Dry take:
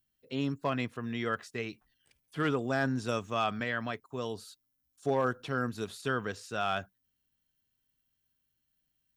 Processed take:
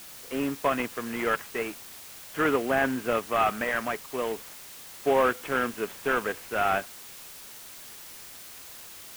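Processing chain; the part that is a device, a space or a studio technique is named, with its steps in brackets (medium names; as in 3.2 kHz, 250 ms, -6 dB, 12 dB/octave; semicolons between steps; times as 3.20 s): army field radio (band-pass 310–3000 Hz; CVSD coder 16 kbps; white noise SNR 15 dB); trim +8 dB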